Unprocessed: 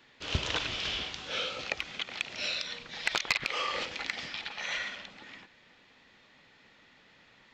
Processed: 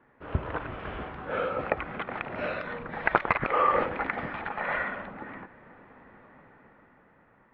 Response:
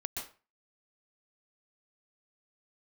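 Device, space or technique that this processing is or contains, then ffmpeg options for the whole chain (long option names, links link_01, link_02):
action camera in a waterproof case: -af "lowpass=frequency=1500:width=0.5412,lowpass=frequency=1500:width=1.3066,dynaudnorm=framelen=230:gausssize=11:maxgain=10dB,volume=3dB" -ar 44100 -c:a aac -b:a 64k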